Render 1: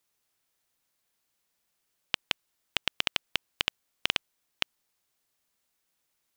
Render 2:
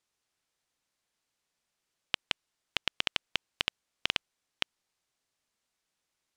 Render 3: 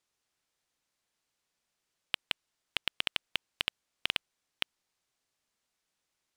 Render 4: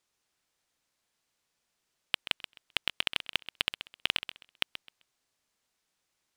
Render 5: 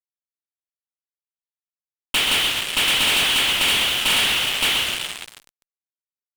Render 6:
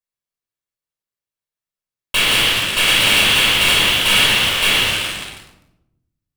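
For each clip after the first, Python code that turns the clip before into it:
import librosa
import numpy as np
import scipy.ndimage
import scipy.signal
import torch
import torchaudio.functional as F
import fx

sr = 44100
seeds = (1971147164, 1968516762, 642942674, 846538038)

y1 = scipy.signal.sosfilt(scipy.signal.butter(2, 8300.0, 'lowpass', fs=sr, output='sos'), x)
y1 = y1 * librosa.db_to_amplitude(-2.0)
y2 = np.clip(y1, -10.0 ** (-10.5 / 20.0), 10.0 ** (-10.5 / 20.0))
y3 = fx.echo_feedback(y2, sr, ms=130, feedback_pct=22, wet_db=-12.0)
y3 = y3 * librosa.db_to_amplitude(2.5)
y4 = fx.rev_double_slope(y3, sr, seeds[0], early_s=0.35, late_s=3.2, knee_db=-16, drr_db=-8.0)
y4 = fx.fuzz(y4, sr, gain_db=39.0, gate_db=-40.0)
y4 = y4 * librosa.db_to_amplitude(-3.5)
y5 = fx.room_shoebox(y4, sr, seeds[1], volume_m3=2400.0, walls='furnished', distance_m=5.5)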